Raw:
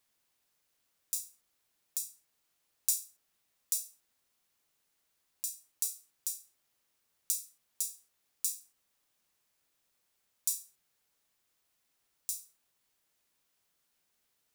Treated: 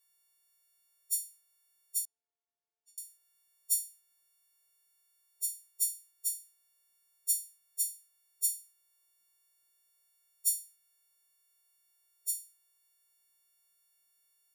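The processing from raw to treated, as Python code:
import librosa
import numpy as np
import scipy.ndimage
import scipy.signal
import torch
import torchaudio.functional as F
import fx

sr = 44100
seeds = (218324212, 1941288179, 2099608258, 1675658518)

y = fx.freq_snap(x, sr, grid_st=4)
y = fx.double_bandpass(y, sr, hz=550.0, octaves=0.77, at=(2.05, 2.98))
y = y * librosa.db_to_amplitude(-9.0)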